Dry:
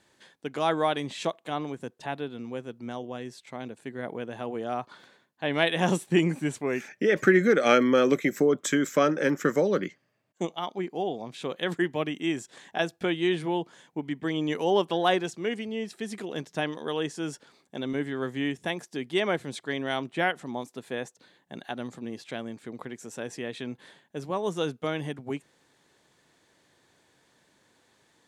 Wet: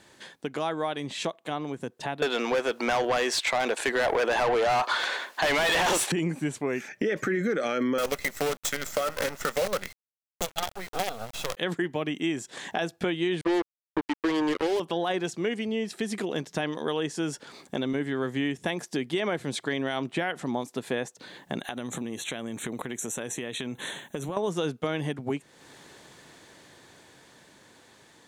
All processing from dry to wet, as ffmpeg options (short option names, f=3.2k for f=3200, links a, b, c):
-filter_complex "[0:a]asettb=1/sr,asplit=3[a][b][c];[a]atrim=end=2.224[d];[b]atrim=start=2.22:end=6.12,asetpts=PTS-STARTPTS,afade=t=in:d=0.004:c=qsin,afade=t=out:st=3.896:d=0.004:c=qsin,highpass=460,asplit=2[e][f];[f]highpass=f=720:p=1,volume=36dB,asoftclip=type=tanh:threshold=-9.5dB[g];[e][g]amix=inputs=2:normalize=0,lowpass=f=4.8k:p=1,volume=-6dB[h];[c]atrim=start=6.116[i];[d][h]acrossfade=d=0.004:c1=hsin:c2=qsin[j];[j][i]acrossfade=d=0.004:c1=qsin:c2=hsin,asettb=1/sr,asplit=3[k][l][m];[k]atrim=end=7.984[n];[l]atrim=start=7.98:end=11.57,asetpts=PTS-STARTPTS,afade=t=in:d=0.004:c=qsin,afade=t=out:st=3.586:d=0.004:c=qsin,highpass=f=460:p=1,aecho=1:1:1.5:0.91,atrim=end_sample=158319,acrusher=bits=5:dc=4:mix=0:aa=0.000001[o];[m]atrim=start=11.566[p];[n][o]acrossfade=d=0.004:c1=hsin:c2=qsin[q];[q][p]acrossfade=d=0.004:c1=qsin:c2=hsin,asettb=1/sr,asplit=3[r][s][t];[r]atrim=end=13.414[u];[s]atrim=start=13.41:end=14.8,asetpts=PTS-STARTPTS,afade=t=in:d=0.004:c=qsin,afade=t=out:st=1.386:d=0.004:c=qsin,acrossover=split=4000[v][w];[w]acompressor=threshold=-56dB:ratio=4:attack=1:release=60[x];[v][x]amix=inputs=2:normalize=0,lowshelf=f=230:t=q:w=3:g=-13,acrusher=bits=3:mix=0:aa=0.5[y];[t]atrim=start=14.796[z];[u][y]acrossfade=d=0.004:c1=hsin:c2=qsin[aa];[aa][z]acrossfade=d=0.004:c1=qsin:c2=hsin,asettb=1/sr,asplit=3[ab][ac][ad];[ab]atrim=end=21.594[ae];[ac]atrim=start=21.59:end=24.37,asetpts=PTS-STARTPTS,afade=t=in:d=0.004:c=qsin,afade=t=out:st=2.776:d=0.004:c=qsin,highshelf=f=4.4k:g=9.5,acompressor=threshold=-41dB:ratio=6:attack=3.2:release=140:knee=1:detection=peak,asuperstop=centerf=4900:order=8:qfactor=2.9[af];[ad]atrim=start=24.366[ag];[ae][af]acrossfade=d=0.004:c1=hsin:c2=qsin[ah];[ah][ag]acrossfade=d=0.004:c1=qsin:c2=hsin,dynaudnorm=f=610:g=11:m=9dB,alimiter=limit=-12dB:level=0:latency=1:release=26,acompressor=threshold=-42dB:ratio=2.5,volume=9dB"